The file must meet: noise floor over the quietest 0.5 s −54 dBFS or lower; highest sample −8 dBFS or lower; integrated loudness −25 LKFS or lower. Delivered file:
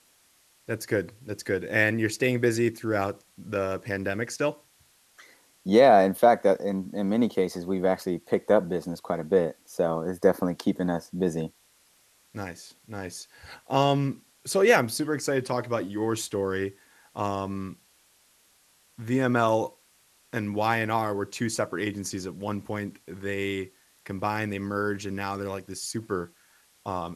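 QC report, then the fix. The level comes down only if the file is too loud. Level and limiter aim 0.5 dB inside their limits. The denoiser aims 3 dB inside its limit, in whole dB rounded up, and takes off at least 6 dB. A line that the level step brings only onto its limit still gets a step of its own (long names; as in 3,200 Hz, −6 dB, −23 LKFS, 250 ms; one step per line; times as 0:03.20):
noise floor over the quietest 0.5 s −63 dBFS: in spec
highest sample −5.5 dBFS: out of spec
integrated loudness −26.5 LKFS: in spec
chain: brickwall limiter −8.5 dBFS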